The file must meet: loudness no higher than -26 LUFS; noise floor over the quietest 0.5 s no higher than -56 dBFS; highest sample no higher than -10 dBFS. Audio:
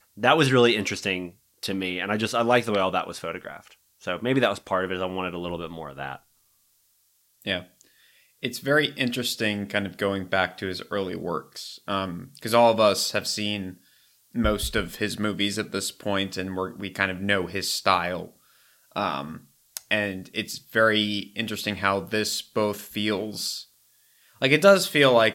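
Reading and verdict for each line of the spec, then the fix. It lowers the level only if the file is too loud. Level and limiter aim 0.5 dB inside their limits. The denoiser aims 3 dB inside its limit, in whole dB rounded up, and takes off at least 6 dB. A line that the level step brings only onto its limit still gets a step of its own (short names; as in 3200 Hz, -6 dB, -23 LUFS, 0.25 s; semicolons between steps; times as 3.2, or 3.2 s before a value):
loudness -25.0 LUFS: fail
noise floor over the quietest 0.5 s -66 dBFS: OK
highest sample -4.0 dBFS: fail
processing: gain -1.5 dB; limiter -10.5 dBFS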